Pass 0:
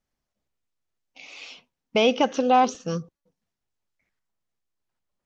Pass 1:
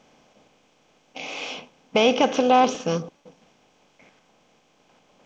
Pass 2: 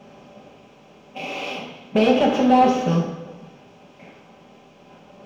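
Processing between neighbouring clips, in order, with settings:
spectral levelling over time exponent 0.6
companding laws mixed up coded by mu; saturation -14.5 dBFS, distortion -12 dB; reverberation RT60 1.1 s, pre-delay 3 ms, DRR -3 dB; trim -8 dB

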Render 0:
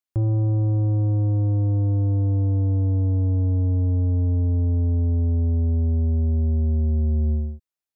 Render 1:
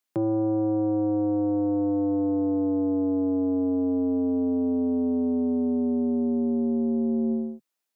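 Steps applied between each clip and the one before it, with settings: steep high-pass 170 Hz 36 dB/octave; trim +7.5 dB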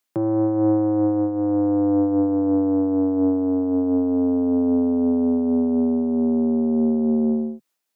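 self-modulated delay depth 0.069 ms; random flutter of the level, depth 65%; trim +7.5 dB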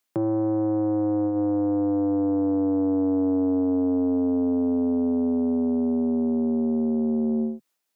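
peak limiter -17.5 dBFS, peak gain reduction 6.5 dB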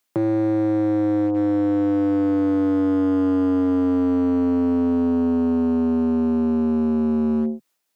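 hard clipper -20 dBFS, distortion -20 dB; trim +4 dB

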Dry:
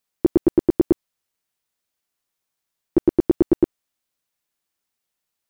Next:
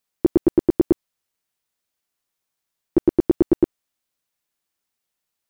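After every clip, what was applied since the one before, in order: no audible change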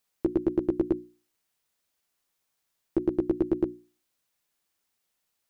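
peak limiter -16.5 dBFS, peak gain reduction 9.5 dB; hum notches 60/120/180/240/300/360 Hz; trim +2 dB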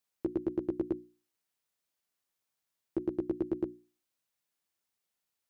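high-pass 47 Hz; trim -7 dB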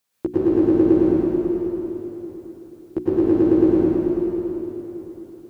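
reverberation RT60 3.9 s, pre-delay 88 ms, DRR -10 dB; trim +8.5 dB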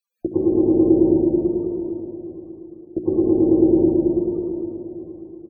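loudest bins only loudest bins 32; on a send: loudspeakers at several distances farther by 24 m -11 dB, 89 m -9 dB

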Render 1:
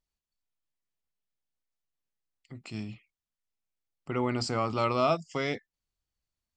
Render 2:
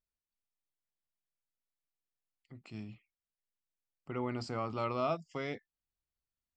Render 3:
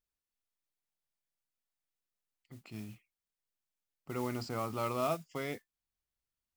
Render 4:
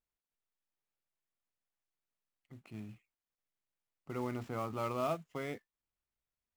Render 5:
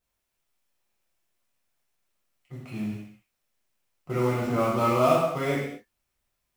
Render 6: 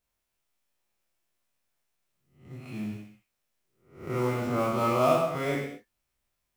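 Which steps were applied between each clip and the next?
low-pass 3.1 kHz 6 dB/octave; trim -7 dB
modulation noise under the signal 17 dB
median filter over 9 samples; trim -1.5 dB
gated-style reverb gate 280 ms falling, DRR -7 dB; trim +6 dB
reverse spectral sustain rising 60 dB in 0.47 s; trim -3.5 dB

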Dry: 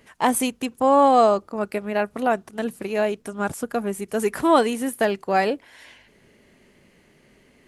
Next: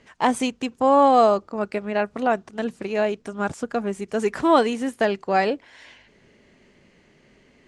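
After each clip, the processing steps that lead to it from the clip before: low-pass 7.4 kHz 24 dB/octave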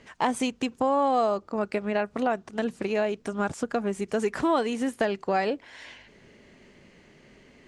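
compression 2.5:1, threshold -27 dBFS, peak gain reduction 10.5 dB; trim +2 dB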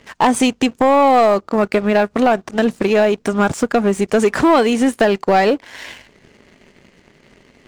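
waveshaping leveller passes 2; trim +6 dB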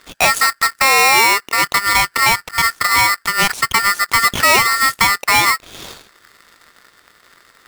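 polarity switched at an audio rate 1.6 kHz

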